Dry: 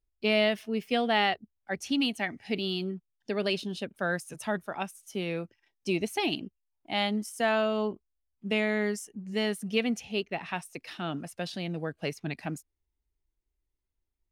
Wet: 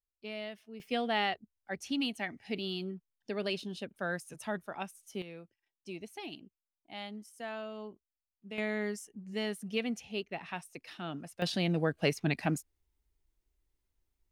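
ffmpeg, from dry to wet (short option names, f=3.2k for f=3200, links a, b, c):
-af "asetnsamples=n=441:p=0,asendcmd='0.8 volume volume -5.5dB;5.22 volume volume -14.5dB;8.58 volume volume -6dB;11.42 volume volume 4dB',volume=-16.5dB"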